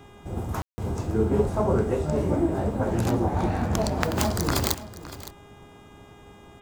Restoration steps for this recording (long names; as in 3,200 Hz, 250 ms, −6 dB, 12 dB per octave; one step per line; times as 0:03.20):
hum removal 407.9 Hz, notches 9
ambience match 0:00.62–0:00.78
echo removal 564 ms −15.5 dB